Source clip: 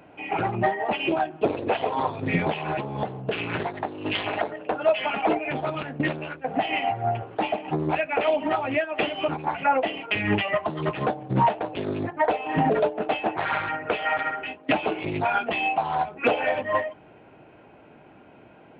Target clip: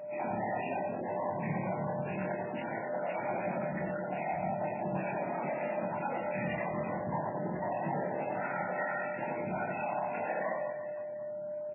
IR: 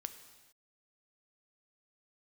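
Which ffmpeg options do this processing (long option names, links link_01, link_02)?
-filter_complex "[0:a]aemphasis=mode=reproduction:type=50kf,bandreject=frequency=1600:width=22,alimiter=limit=-20.5dB:level=0:latency=1:release=11,afftfilt=real='hypot(re,im)*cos(2*PI*random(0))':imag='hypot(re,im)*sin(2*PI*random(1))':win_size=512:overlap=0.75,aeval=exprs='val(0)+0.00794*sin(2*PI*600*n/s)':channel_layout=same,aresample=8000,asoftclip=type=tanh:threshold=-32dB,aresample=44100,atempo=1.6,highpass=frequency=120:width=0.5412,highpass=frequency=120:width=1.3066,equalizer=frequency=190:width_type=q:width=4:gain=4,equalizer=frequency=280:width_type=q:width=4:gain=-7,equalizer=frequency=430:width_type=q:width=4:gain=-10,equalizer=frequency=1200:width_type=q:width=4:gain=-9,lowpass=frequency=2100:width=0.5412,lowpass=frequency=2100:width=1.3066,asplit=2[link_01][link_02];[link_02]adelay=27,volume=-4.5dB[link_03];[link_01][link_03]amix=inputs=2:normalize=0,aecho=1:1:90|202.5|343.1|518.9|738.6:0.631|0.398|0.251|0.158|0.1,volume=3dB" -ar 11025 -c:a libmp3lame -b:a 8k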